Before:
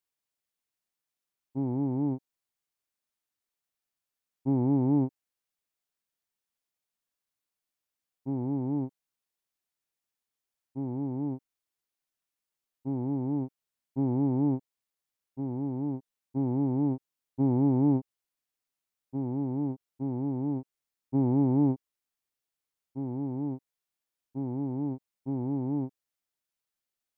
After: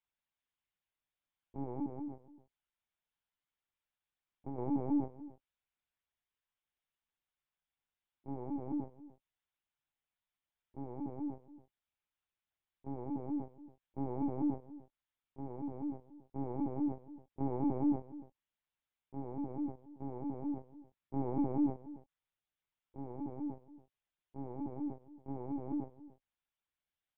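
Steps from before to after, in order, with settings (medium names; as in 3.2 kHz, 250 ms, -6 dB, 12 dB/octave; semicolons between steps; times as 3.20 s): high-pass 370 Hz 12 dB/octave; band-stop 750 Hz, Q 17; comb 6.2 ms, depth 66%; 1.85–4.58 s: compression 2.5:1, threshold -40 dBFS, peak gain reduction 8 dB; echo from a far wall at 49 m, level -17 dB; LPC vocoder at 8 kHz pitch kept; trim -2.5 dB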